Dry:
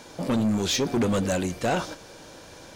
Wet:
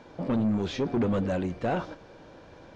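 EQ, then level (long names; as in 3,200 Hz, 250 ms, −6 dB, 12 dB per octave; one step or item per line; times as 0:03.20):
head-to-tape spacing loss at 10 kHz 25 dB
high-shelf EQ 6,400 Hz −6.5 dB
−1.5 dB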